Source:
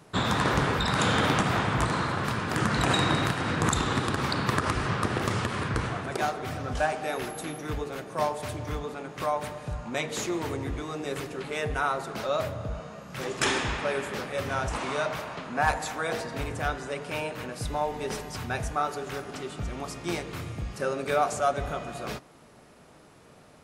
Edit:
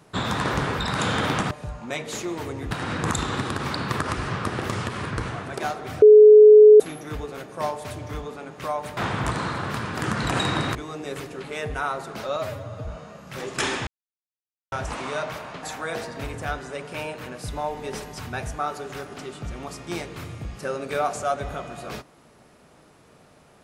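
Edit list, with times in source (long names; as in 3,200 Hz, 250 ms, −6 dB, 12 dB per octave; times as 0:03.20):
0:01.51–0:03.29: swap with 0:09.55–0:10.75
0:06.60–0:07.38: beep over 425 Hz −6 dBFS
0:12.36–0:12.70: time-stretch 1.5×
0:13.70–0:14.55: silence
0:15.46–0:15.80: remove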